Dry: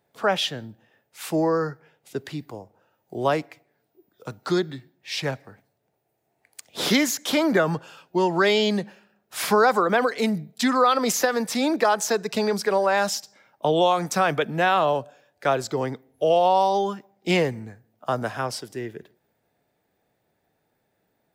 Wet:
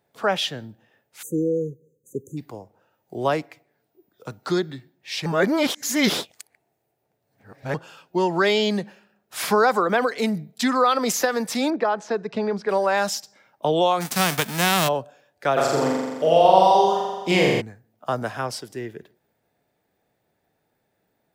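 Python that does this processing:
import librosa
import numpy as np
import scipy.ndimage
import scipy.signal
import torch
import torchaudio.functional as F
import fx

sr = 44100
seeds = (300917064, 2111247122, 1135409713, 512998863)

y = fx.spec_erase(x, sr, start_s=1.23, length_s=1.14, low_hz=540.0, high_hz=6000.0)
y = fx.spacing_loss(y, sr, db_at_10k=27, at=(11.7, 12.69))
y = fx.envelope_flatten(y, sr, power=0.3, at=(14.0, 14.87), fade=0.02)
y = fx.room_flutter(y, sr, wall_m=7.3, rt60_s=1.4, at=(15.56, 17.6), fade=0.02)
y = fx.edit(y, sr, fx.reverse_span(start_s=5.26, length_s=2.48), tone=tone)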